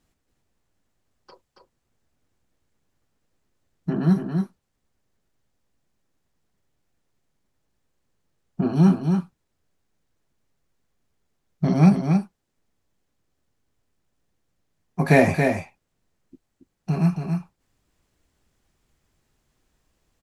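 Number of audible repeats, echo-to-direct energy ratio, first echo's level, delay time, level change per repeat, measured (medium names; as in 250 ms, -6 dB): 1, -5.5 dB, -5.5 dB, 278 ms, no regular repeats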